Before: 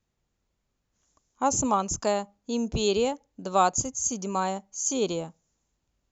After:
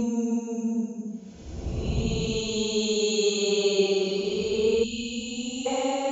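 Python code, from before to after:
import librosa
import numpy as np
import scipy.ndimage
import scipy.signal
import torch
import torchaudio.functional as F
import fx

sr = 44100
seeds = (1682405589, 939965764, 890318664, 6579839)

y = fx.paulstretch(x, sr, seeds[0], factor=12.0, window_s=0.1, from_s=2.59)
y = fx.spec_box(y, sr, start_s=4.84, length_s=0.82, low_hz=290.0, high_hz=2500.0, gain_db=-22)
y = fx.hum_notches(y, sr, base_hz=50, count=5)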